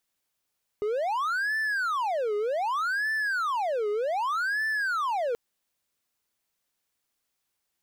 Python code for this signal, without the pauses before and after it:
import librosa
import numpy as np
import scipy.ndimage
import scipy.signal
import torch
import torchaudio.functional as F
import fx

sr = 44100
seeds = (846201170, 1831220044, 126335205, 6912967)

y = fx.siren(sr, length_s=4.53, kind='wail', low_hz=413.0, high_hz=1760.0, per_s=0.65, wave='triangle', level_db=-23.0)